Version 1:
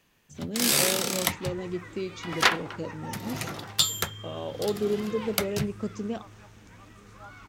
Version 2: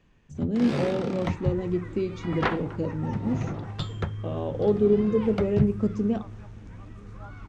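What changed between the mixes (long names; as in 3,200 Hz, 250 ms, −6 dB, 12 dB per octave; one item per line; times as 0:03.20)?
speech: send +7.5 dB
first sound: add head-to-tape spacing loss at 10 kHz 28 dB
master: add spectral tilt −3 dB per octave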